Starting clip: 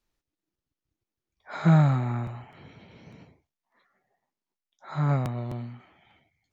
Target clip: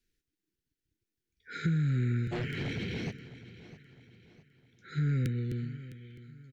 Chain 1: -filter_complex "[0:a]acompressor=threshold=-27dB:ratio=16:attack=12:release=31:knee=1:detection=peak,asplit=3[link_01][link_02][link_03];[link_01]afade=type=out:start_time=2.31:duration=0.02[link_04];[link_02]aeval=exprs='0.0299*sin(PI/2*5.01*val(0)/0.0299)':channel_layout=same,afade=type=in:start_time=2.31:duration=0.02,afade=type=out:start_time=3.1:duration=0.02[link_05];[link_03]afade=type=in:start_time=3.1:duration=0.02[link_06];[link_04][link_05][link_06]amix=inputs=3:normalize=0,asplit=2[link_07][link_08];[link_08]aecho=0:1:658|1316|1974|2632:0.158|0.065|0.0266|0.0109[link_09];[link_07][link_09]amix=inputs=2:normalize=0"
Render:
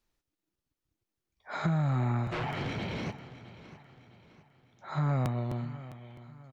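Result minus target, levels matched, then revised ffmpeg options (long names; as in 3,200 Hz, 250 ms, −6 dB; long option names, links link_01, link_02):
1,000 Hz band +12.0 dB
-filter_complex "[0:a]acompressor=threshold=-27dB:ratio=16:attack=12:release=31:knee=1:detection=peak,asuperstop=centerf=840:order=20:qfactor=0.92,asplit=3[link_01][link_02][link_03];[link_01]afade=type=out:start_time=2.31:duration=0.02[link_04];[link_02]aeval=exprs='0.0299*sin(PI/2*5.01*val(0)/0.0299)':channel_layout=same,afade=type=in:start_time=2.31:duration=0.02,afade=type=out:start_time=3.1:duration=0.02[link_05];[link_03]afade=type=in:start_time=3.1:duration=0.02[link_06];[link_04][link_05][link_06]amix=inputs=3:normalize=0,asplit=2[link_07][link_08];[link_08]aecho=0:1:658|1316|1974|2632:0.158|0.065|0.0266|0.0109[link_09];[link_07][link_09]amix=inputs=2:normalize=0"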